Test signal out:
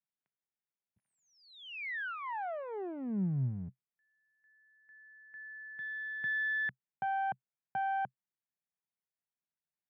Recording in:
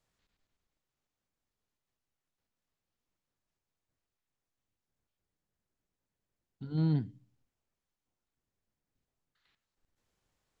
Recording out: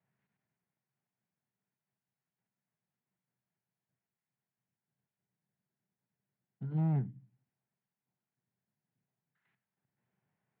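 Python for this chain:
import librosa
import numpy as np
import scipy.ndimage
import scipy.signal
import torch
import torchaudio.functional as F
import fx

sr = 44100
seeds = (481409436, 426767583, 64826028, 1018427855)

y = fx.clip_asym(x, sr, top_db=-41.5, bottom_db=-25.0)
y = fx.cabinet(y, sr, low_hz=120.0, low_slope=24, high_hz=2200.0, hz=(130.0, 190.0, 300.0, 510.0, 1200.0), db=(8, 6, -7, -7, -7))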